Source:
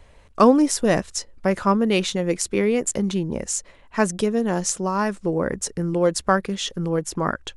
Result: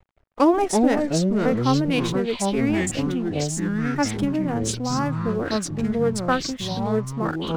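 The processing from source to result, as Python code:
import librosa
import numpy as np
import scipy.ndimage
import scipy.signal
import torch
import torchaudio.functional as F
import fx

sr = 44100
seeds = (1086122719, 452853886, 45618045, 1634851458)

y = fx.wiener(x, sr, points=9)
y = fx.pitch_keep_formants(y, sr, semitones=5.0)
y = np.sign(y) * np.maximum(np.abs(y) - 10.0 ** (-46.5 / 20.0), 0.0)
y = fx.echo_pitch(y, sr, ms=197, semitones=-5, count=3, db_per_echo=-3.0)
y = y * 10.0 ** (-2.5 / 20.0)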